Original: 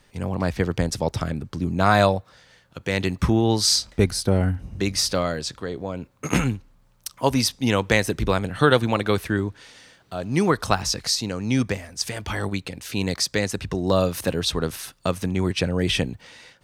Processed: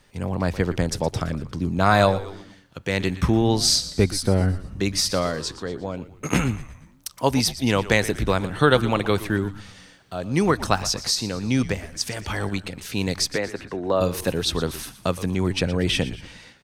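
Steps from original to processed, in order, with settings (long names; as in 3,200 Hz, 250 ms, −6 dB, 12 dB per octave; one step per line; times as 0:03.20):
0:13.36–0:14.01: three-way crossover with the lows and the highs turned down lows −13 dB, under 270 Hz, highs −15 dB, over 2,600 Hz
echo with shifted repeats 118 ms, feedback 48%, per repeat −96 Hz, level −15 dB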